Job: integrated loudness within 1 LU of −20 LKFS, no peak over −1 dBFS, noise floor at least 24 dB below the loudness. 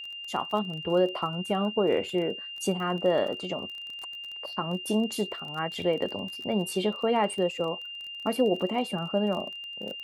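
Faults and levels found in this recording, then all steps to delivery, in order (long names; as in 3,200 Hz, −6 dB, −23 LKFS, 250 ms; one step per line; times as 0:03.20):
crackle rate 25 per second; interfering tone 2,800 Hz; level of the tone −37 dBFS; integrated loudness −29.0 LKFS; sample peak −12.5 dBFS; target loudness −20.0 LKFS
→ click removal
notch filter 2,800 Hz, Q 30
level +9 dB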